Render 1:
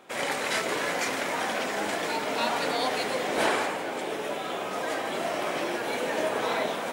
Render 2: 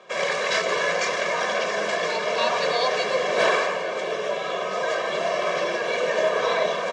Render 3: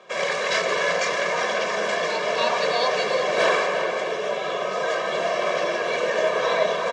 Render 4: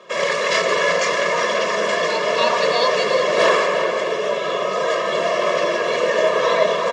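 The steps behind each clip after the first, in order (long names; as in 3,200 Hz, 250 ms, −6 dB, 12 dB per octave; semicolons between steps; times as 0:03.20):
elliptic band-pass filter 160–6,300 Hz, stop band 50 dB; comb filter 1.8 ms, depth 95%; level +2.5 dB
slap from a distant wall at 61 metres, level −7 dB
notch comb filter 770 Hz; level +5.5 dB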